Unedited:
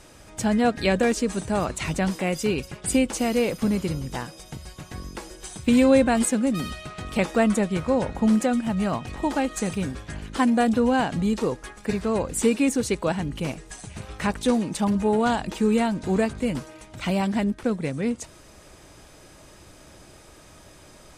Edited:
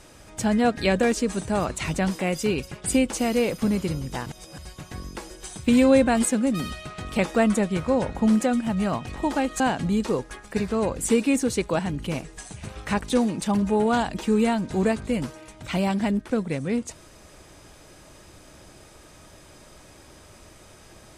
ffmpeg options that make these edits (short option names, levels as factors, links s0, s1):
-filter_complex "[0:a]asplit=4[s0][s1][s2][s3];[s0]atrim=end=4.262[s4];[s1]atrim=start=4.258:end=4.582,asetpts=PTS-STARTPTS,areverse[s5];[s2]atrim=start=4.578:end=9.602[s6];[s3]atrim=start=10.928[s7];[s4][s5]acrossfade=d=0.004:c1=hsin:c2=hsin[s8];[s8][s6]acrossfade=d=0.004:c1=hsin:c2=hsin[s9];[s9][s7]acrossfade=d=0.004:c1=hsin:c2=hsin"